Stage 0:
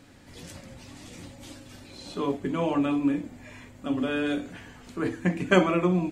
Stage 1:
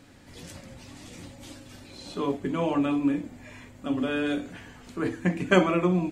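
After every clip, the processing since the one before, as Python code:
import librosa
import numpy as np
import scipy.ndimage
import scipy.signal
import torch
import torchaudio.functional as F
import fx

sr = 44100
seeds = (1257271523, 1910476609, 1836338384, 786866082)

y = x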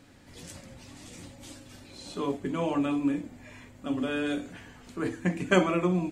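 y = fx.dynamic_eq(x, sr, hz=8200.0, q=1.0, threshold_db=-56.0, ratio=4.0, max_db=5)
y = y * librosa.db_to_amplitude(-2.5)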